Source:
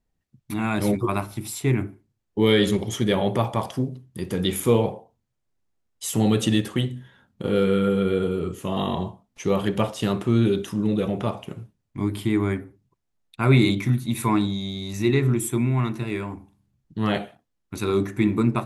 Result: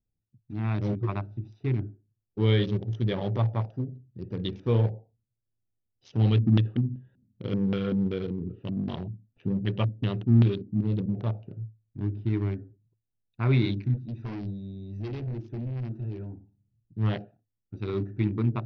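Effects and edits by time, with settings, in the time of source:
6.19–11.15 LFO low-pass square 2.6 Hz 240–3100 Hz
13.94–16.22 hard clip -25 dBFS
whole clip: Wiener smoothing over 41 samples; steep low-pass 5900 Hz 96 dB/oct; bell 110 Hz +14 dB 0.23 oct; gain -8 dB

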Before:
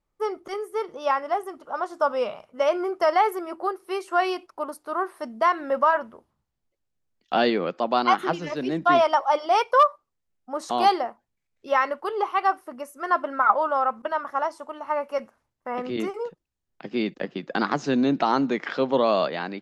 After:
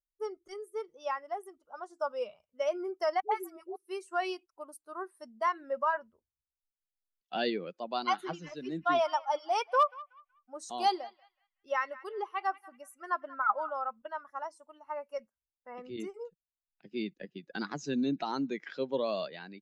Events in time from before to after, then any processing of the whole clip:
3.2–3.76 dispersion highs, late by 0.115 s, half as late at 440 Hz
7.83–13.76 narrowing echo 0.186 s, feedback 47%, band-pass 1900 Hz, level -11.5 dB
whole clip: per-bin expansion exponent 1.5; LPF 9600 Hz 12 dB/oct; high shelf 5500 Hz +10.5 dB; gain -7.5 dB

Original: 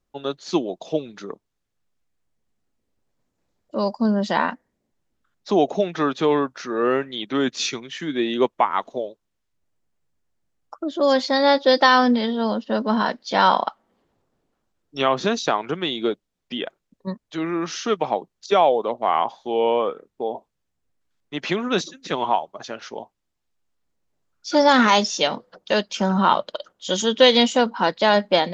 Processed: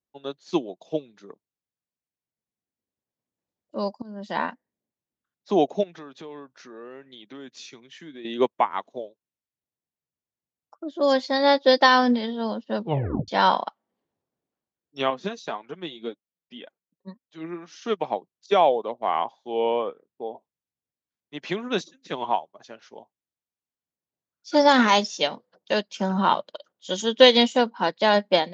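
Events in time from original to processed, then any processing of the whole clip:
4.02–4.43 fade in, from -19.5 dB
5.83–8.25 compressor 4:1, threshold -29 dBFS
12.77 tape stop 0.51 s
15.1–17.82 flange 1.9 Hz, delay 3.3 ms, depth 3.1 ms, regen +41%
19.83–20.35 air absorption 100 m
whole clip: HPF 93 Hz; bell 1300 Hz -4.5 dB 0.23 oct; upward expander 1.5:1, over -39 dBFS; gain +1 dB

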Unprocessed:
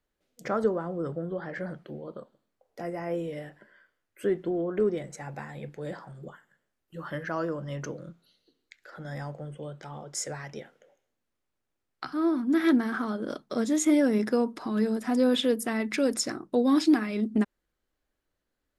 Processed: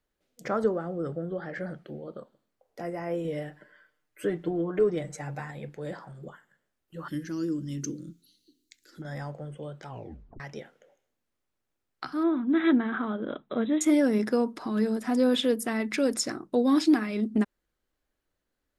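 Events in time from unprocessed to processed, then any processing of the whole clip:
0.73–2.19 notch 1000 Hz, Q 6
3.24–5.51 comb 6.6 ms, depth 69%
7.08–9.02 EQ curve 190 Hz 0 dB, 300 Hz +9 dB, 660 Hz -25 dB, 6400 Hz +9 dB
9.88 tape stop 0.52 s
12.23–13.81 brick-wall FIR low-pass 4000 Hz

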